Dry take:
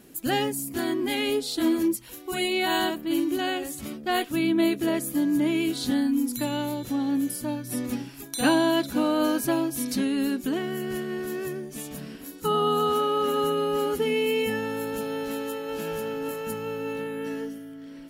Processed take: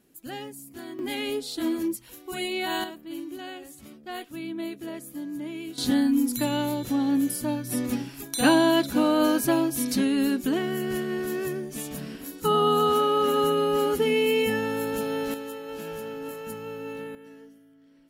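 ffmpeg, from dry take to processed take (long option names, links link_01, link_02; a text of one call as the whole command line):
ffmpeg -i in.wav -af "asetnsamples=nb_out_samples=441:pad=0,asendcmd='0.99 volume volume -4dB;2.84 volume volume -11dB;5.78 volume volume 2dB;15.34 volume volume -4.5dB;17.15 volume volume -15.5dB',volume=-12dB" out.wav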